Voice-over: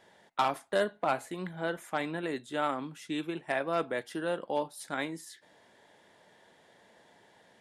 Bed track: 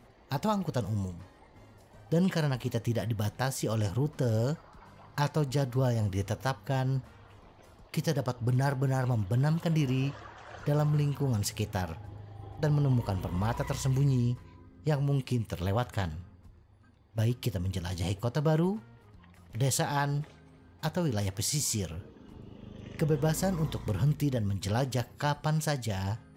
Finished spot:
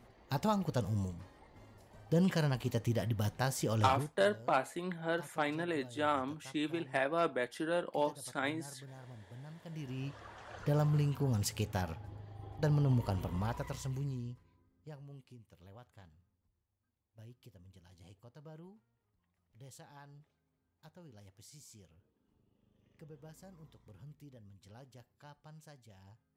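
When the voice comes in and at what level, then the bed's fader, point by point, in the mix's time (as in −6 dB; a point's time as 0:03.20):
3.45 s, −1.5 dB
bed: 0:03.94 −3 dB
0:04.18 −23 dB
0:09.53 −23 dB
0:10.32 −3.5 dB
0:13.20 −3.5 dB
0:15.36 −26 dB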